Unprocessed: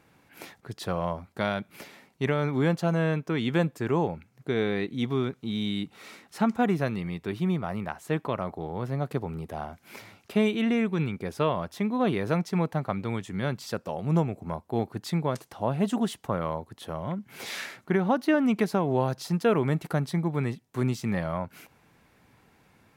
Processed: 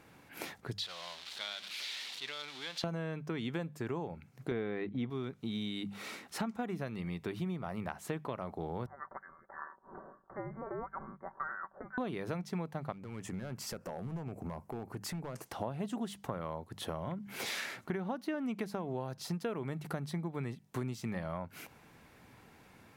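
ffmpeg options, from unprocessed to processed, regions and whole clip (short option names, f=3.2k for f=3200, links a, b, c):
-filter_complex "[0:a]asettb=1/sr,asplit=3[a][b][c];[a]atrim=end=0.784[d];[b]atrim=start=0.78:end=2.84,asetpts=PTS-STARTPTS,afade=t=in:d=0.004:c=qsin,afade=t=out:st=2.056:d=0.004:c=qsin,aeval=exprs='val(0)+0.5*0.0335*sgn(val(0))':c=same,bandpass=f=3.8k:t=q:w=2.7[e];[c]atrim=start=2.836[f];[d][e]acrossfade=d=0.004:c1=hsin:c2=qsin[g];[g][f]acrossfade=d=0.004:c1=qsin:c2=hsin,asettb=1/sr,asplit=3[h][i][j];[h]atrim=end=4.514[k];[i]atrim=start=4.51:end=5.1,asetpts=PTS-STARTPTS,afade=t=in:d=0.004:c=qsin,afade=t=out:st=0.586:d=0.004:c=qsin,agate=range=-10dB:threshold=-37dB:ratio=16:release=100:detection=peak,lowpass=2.3k,acontrast=89[l];[j]atrim=start=5.096[m];[k][l]acrossfade=d=0.004:c1=hsin:c2=qsin[n];[n][m]acrossfade=d=0.004:c1=qsin:c2=hsin,asettb=1/sr,asplit=3[o][p][q];[o]atrim=end=8.864[r];[p]atrim=start=8.86:end=11.98,asetpts=PTS-STARTPTS,afade=t=in:d=0.004:c=qsin,afade=t=out:st=3.116:d=0.004:c=qsin,highpass=f=1.3k:w=0.5412,highpass=f=1.3k:w=1.3066,aecho=1:1:5.2:0.55,atrim=end_sample=137592,lowpass=f=2.1k:t=q:w=0.5098,lowpass=f=2.1k:t=q:w=0.6013,lowpass=f=2.1k:t=q:w=0.9,lowpass=f=2.1k:t=q:w=2.563,afreqshift=-2500[s];[q]atrim=start=11.976[t];[r][s]acrossfade=d=0.004:c1=hsin:c2=qsin[u];[u][t]acrossfade=d=0.004:c1=qsin:c2=hsin,asettb=1/sr,asplit=3[v][w][x];[v]atrim=end=12.924[y];[w]atrim=start=12.92:end=15.46,asetpts=PTS-STARTPTS,afade=t=in:d=0.004:c=qsin,afade=t=out:st=2.536:d=0.004:c=qsin,equalizer=f=3.7k:t=o:w=0.55:g=-12,acompressor=threshold=-37dB:ratio=5:attack=3.2:release=140:knee=1:detection=peak,aeval=exprs='clip(val(0),-1,0.0158)':c=same[z];[x]atrim=start=15.456[aa];[y][z]acrossfade=d=0.004:c1=hsin:c2=qsin[ab];[ab][aa]acrossfade=d=0.004:c1=qsin:c2=hsin,bandreject=f=50:t=h:w=6,bandreject=f=100:t=h:w=6,bandreject=f=150:t=h:w=6,bandreject=f=200:t=h:w=6,acompressor=threshold=-37dB:ratio=6,volume=2dB"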